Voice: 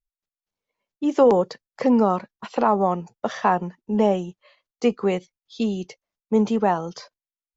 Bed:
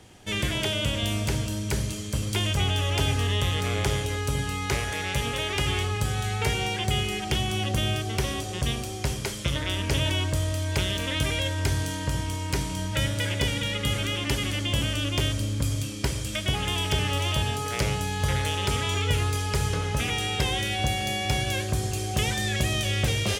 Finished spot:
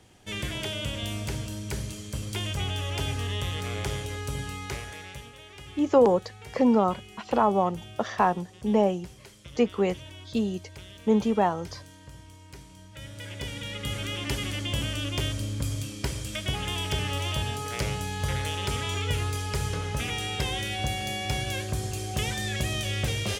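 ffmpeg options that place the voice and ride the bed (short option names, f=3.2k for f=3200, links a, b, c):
-filter_complex "[0:a]adelay=4750,volume=-3dB[a];[1:a]volume=10dB,afade=t=out:st=4.46:d=0.86:silence=0.211349,afade=t=in:st=12.94:d=1.33:silence=0.16788[b];[a][b]amix=inputs=2:normalize=0"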